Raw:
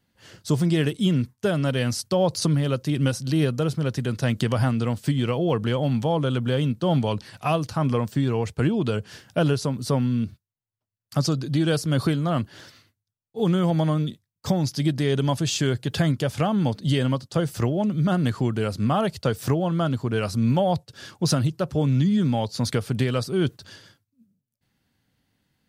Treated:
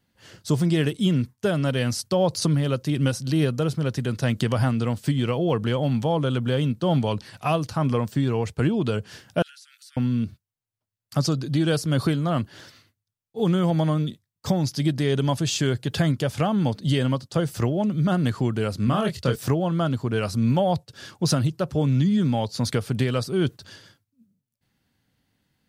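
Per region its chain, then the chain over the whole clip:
9.42–9.97 steep high-pass 1400 Hz 96 dB/oct + compressor, threshold -46 dBFS
18.85–19.36 bell 780 Hz -7.5 dB 0.58 oct + doubler 24 ms -5 dB
whole clip: dry

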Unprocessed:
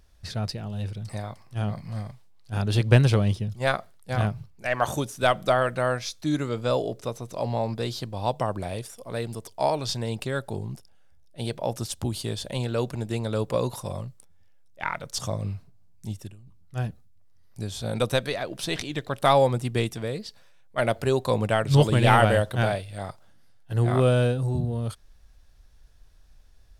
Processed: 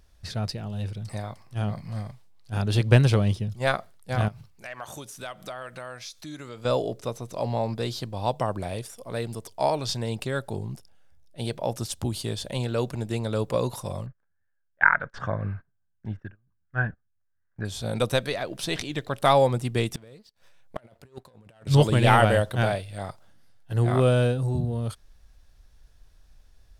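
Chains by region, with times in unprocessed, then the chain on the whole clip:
4.28–6.65 tilt shelf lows -4 dB, about 670 Hz + compressor 2.5:1, threshold -41 dBFS
14.06–17.65 gate -44 dBFS, range -20 dB + synth low-pass 1600 Hz, resonance Q 10
19.94–21.67 sample leveller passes 2 + negative-ratio compressor -22 dBFS, ratio -0.5 + flipped gate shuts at -20 dBFS, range -28 dB
whole clip: dry

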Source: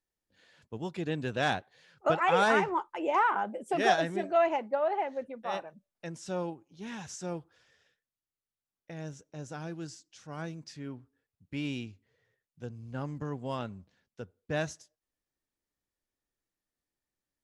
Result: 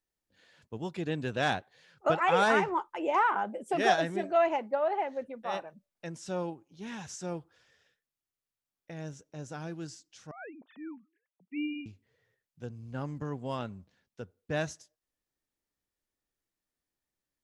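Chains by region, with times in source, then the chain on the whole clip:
10.31–11.86 sine-wave speech + HPF 220 Hz
whole clip: dry

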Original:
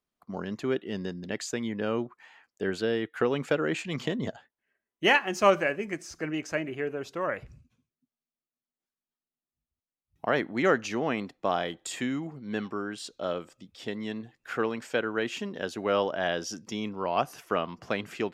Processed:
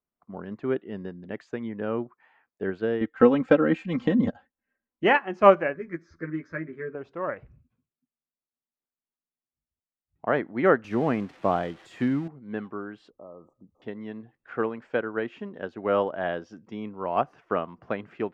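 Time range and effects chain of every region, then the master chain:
3.01–5.04 tone controls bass +8 dB, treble +8 dB + comb 3.8 ms, depth 77%
5.74–6.95 fixed phaser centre 2800 Hz, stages 6 + doubler 12 ms -2 dB
10.84–12.28 switching spikes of -24 dBFS + low shelf 210 Hz +9.5 dB
13.1–13.82 low-pass opened by the level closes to 2800 Hz, open at -28 dBFS + compressor 2.5:1, threshold -40 dBFS + brick-wall FIR band-stop 1300–5800 Hz
whole clip: LPF 1700 Hz 12 dB/oct; upward expander 1.5:1, over -37 dBFS; gain +6.5 dB

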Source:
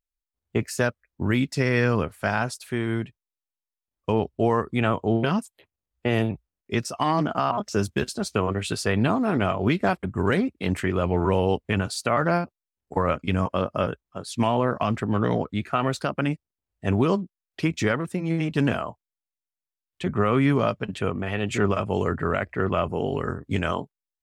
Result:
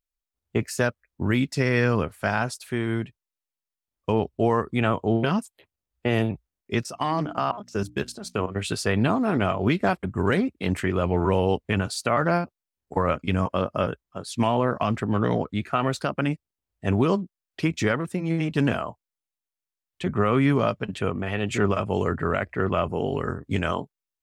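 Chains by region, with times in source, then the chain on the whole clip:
6.83–8.56 level quantiser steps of 12 dB + notches 60/120/180/240/300 Hz
whole clip: dry

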